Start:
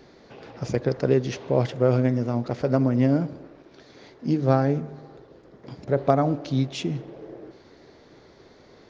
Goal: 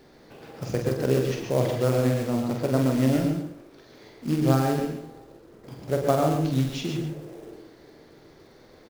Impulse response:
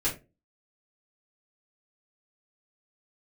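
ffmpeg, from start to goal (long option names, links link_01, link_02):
-filter_complex "[0:a]acrusher=bits=4:mode=log:mix=0:aa=0.000001,aecho=1:1:46|138:0.531|0.376,asplit=2[link_01][link_02];[1:a]atrim=start_sample=2205,atrim=end_sample=3528,adelay=105[link_03];[link_02][link_03]afir=irnorm=-1:irlink=0,volume=-13dB[link_04];[link_01][link_04]amix=inputs=2:normalize=0,volume=-3.5dB"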